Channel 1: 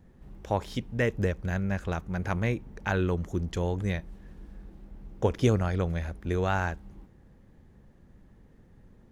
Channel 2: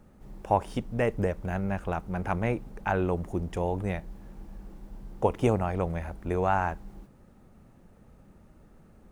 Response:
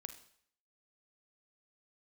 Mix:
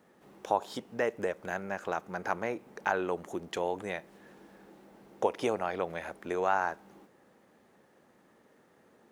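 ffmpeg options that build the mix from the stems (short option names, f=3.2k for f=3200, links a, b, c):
-filter_complex "[0:a]acompressor=threshold=-33dB:ratio=6,volume=3dB[a];[1:a]volume=-6.5dB,asplit=2[b][c];[c]volume=-7.5dB[d];[2:a]atrim=start_sample=2205[e];[d][e]afir=irnorm=-1:irlink=0[f];[a][b][f]amix=inputs=3:normalize=0,highpass=410"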